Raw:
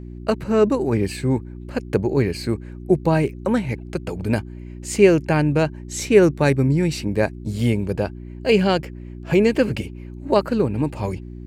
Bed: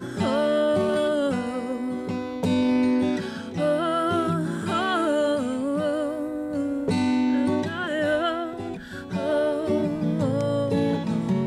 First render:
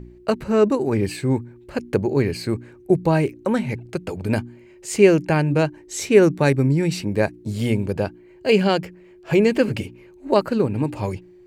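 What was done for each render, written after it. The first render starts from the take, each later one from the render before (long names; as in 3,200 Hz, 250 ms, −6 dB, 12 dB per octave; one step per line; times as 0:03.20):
hum removal 60 Hz, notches 5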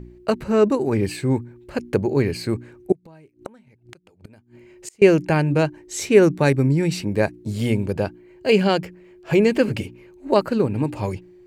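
0:02.92–0:05.02: gate with flip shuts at −20 dBFS, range −29 dB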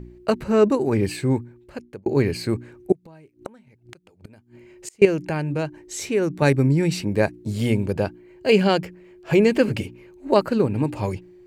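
0:01.27–0:02.06: fade out
0:05.05–0:06.42: downward compressor 1.5 to 1, threshold −32 dBFS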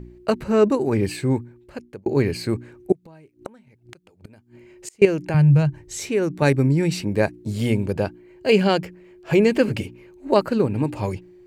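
0:05.34–0:06.00: low shelf with overshoot 180 Hz +10 dB, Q 3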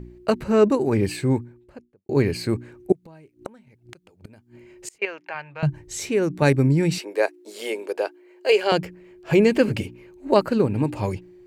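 0:01.38–0:02.09: fade out and dull
0:04.98–0:05.63: flat-topped band-pass 1,600 Hz, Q 0.67
0:06.98–0:08.72: Butterworth high-pass 360 Hz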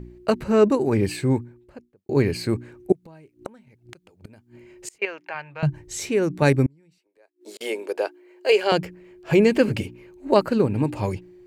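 0:06.66–0:07.61: gate with flip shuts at −27 dBFS, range −37 dB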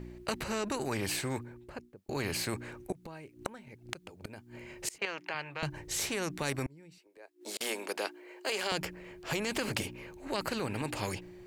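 brickwall limiter −13.5 dBFS, peak gain reduction 9.5 dB
every bin compressed towards the loudest bin 2 to 1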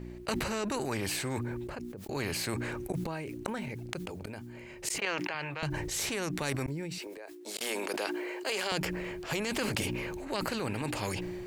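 level that may fall only so fast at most 21 dB per second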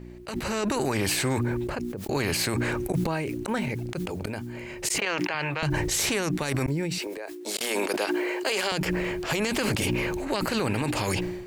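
brickwall limiter −25 dBFS, peak gain reduction 11 dB
automatic gain control gain up to 9 dB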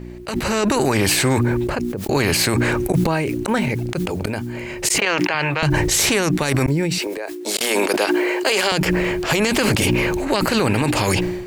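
level +8.5 dB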